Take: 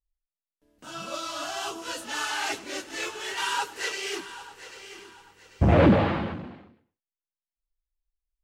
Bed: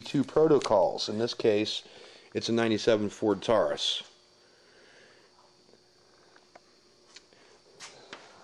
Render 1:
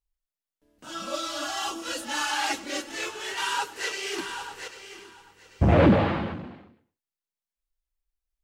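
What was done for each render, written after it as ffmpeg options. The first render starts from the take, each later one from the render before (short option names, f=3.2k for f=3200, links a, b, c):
-filter_complex "[0:a]asettb=1/sr,asplit=3[a][b][c];[a]atrim=end=0.894[d];[b]atrim=start=0.89:end=2.92,asetpts=PTS-STARTPTS,afade=t=in:d=0.004:c=qsin,afade=t=out:st=2.026:d=0.004:c=qsin,aecho=1:1:3.6:0.85,atrim=end_sample=89523[e];[c]atrim=start=2.916[f];[d][e]acrossfade=d=0.004:c1=hsin:c2=qsin[g];[g][f]acrossfade=d=0.004:c1=qsin:c2=hsin,asettb=1/sr,asplit=3[h][i][j];[h]atrim=end=4.184[k];[i]atrim=start=4.18:end=4.68,asetpts=PTS-STARTPTS,afade=t=in:d=0.004:c=qsin,afade=t=out:st=0.496:d=0.004:c=qsin,acontrast=56[l];[j]atrim=start=4.676[m];[k][l]acrossfade=d=0.004:c1=hsin:c2=qsin[n];[n][m]acrossfade=d=0.004:c1=qsin:c2=hsin"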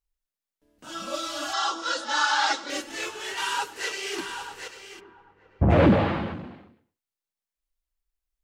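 -filter_complex "[0:a]asettb=1/sr,asplit=3[a][b][c];[a]atrim=end=1.534[d];[b]atrim=start=1.53:end=2.7,asetpts=PTS-STARTPTS,afade=t=in:d=0.004:c=qsin,afade=t=out:st=1.166:d=0.004:c=qsin,highpass=330,equalizer=f=550:t=q:w=4:g=4,equalizer=f=960:t=q:w=4:g=7,equalizer=f=1.4k:t=q:w=4:g=10,equalizer=f=2.6k:t=q:w=4:g=-6,equalizer=f=3.7k:t=q:w=4:g=8,equalizer=f=5.2k:t=q:w=4:g=5,lowpass=f=7.3k:w=0.5412,lowpass=f=7.3k:w=1.3066[e];[c]atrim=start=2.696[f];[d][e]acrossfade=d=0.004:c1=hsin:c2=qsin[g];[g][f]acrossfade=d=0.004:c1=qsin:c2=hsin,asplit=3[h][i][j];[h]afade=t=out:st=4.99:d=0.02[k];[i]lowpass=1.4k,afade=t=in:st=4.99:d=0.02,afade=t=out:st=5.69:d=0.02[l];[j]afade=t=in:st=5.69:d=0.02[m];[k][l][m]amix=inputs=3:normalize=0"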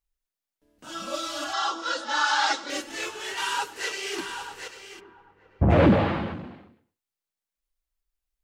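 -filter_complex "[0:a]asettb=1/sr,asplit=3[a][b][c];[a]atrim=end=1.444[d];[b]atrim=start=1.44:end=2.26,asetpts=PTS-STARTPTS,afade=t=in:d=0.004:c=qsin,afade=t=out:st=0.816:d=0.004:c=qsin,highshelf=f=6.6k:g=-7[e];[c]atrim=start=2.256[f];[d][e]acrossfade=d=0.004:c1=hsin:c2=qsin[g];[g][f]acrossfade=d=0.004:c1=qsin:c2=hsin"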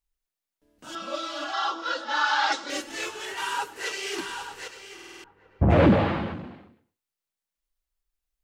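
-filter_complex "[0:a]asettb=1/sr,asplit=3[a][b][c];[a]atrim=end=0.954[d];[b]atrim=start=0.95:end=2.52,asetpts=PTS-STARTPTS,afade=t=in:d=0.004:c=qsin,afade=t=out:st=1.566:d=0.004:c=qsin,acrossover=split=200 5100:gain=0.224 1 0.158[e][f][g];[e][f][g]amix=inputs=3:normalize=0[h];[c]atrim=start=2.516[i];[d][h]acrossfade=d=0.004:c1=hsin:c2=qsin[j];[j][i]acrossfade=d=0.004:c1=qsin:c2=hsin,asettb=1/sr,asplit=3[k][l][m];[k]atrim=end=3.254[n];[l]atrim=start=3.25:end=3.86,asetpts=PTS-STARTPTS,afade=t=in:d=0.004:c=qsin,afade=t=out:st=0.606:d=0.004:c=qsin,equalizer=f=4.8k:t=o:w=2:g=-5[o];[m]atrim=start=3.856[p];[n][o]acrossfade=d=0.004:c1=hsin:c2=qsin[q];[q][p]acrossfade=d=0.004:c1=qsin:c2=hsin,asplit=7[r][s][t][u][v][w][x];[r]atrim=end=4.992[y];[s]atrim=start=4.938:end=4.992[z];[t]atrim=start=4.938:end=4.992[aa];[u]atrim=start=4.938:end=4.992[ab];[v]atrim=start=4.938:end=4.992[ac];[w]atrim=start=4.938:end=4.992[ad];[x]atrim=start=5.238[ae];[y][z]acrossfade=d=0.004:c1=hsin:c2=hsin[af];[af][aa]acrossfade=d=0.004:c1=hsin:c2=hsin[ag];[ag][ab]acrossfade=d=0.004:c1=hsin:c2=hsin[ah];[ah][ac]acrossfade=d=0.004:c1=hsin:c2=hsin[ai];[ai][ad]acrossfade=d=0.004:c1=hsin:c2=hsin[aj];[aj][ae]acrossfade=d=0.004:c1=hsin:c2=hsin"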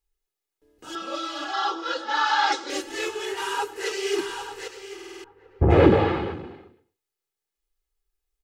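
-af "equalizer=f=400:w=3.3:g=8,aecho=1:1:2.4:0.5"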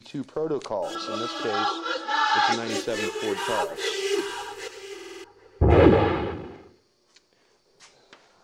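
-filter_complex "[1:a]volume=-5.5dB[a];[0:a][a]amix=inputs=2:normalize=0"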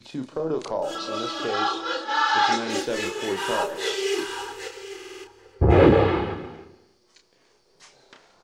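-filter_complex "[0:a]asplit=2[a][b];[b]adelay=31,volume=-6dB[c];[a][c]amix=inputs=2:normalize=0,aecho=1:1:177|302:0.1|0.112"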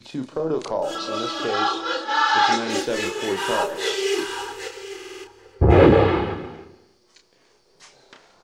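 -af "volume=2.5dB,alimiter=limit=-2dB:level=0:latency=1"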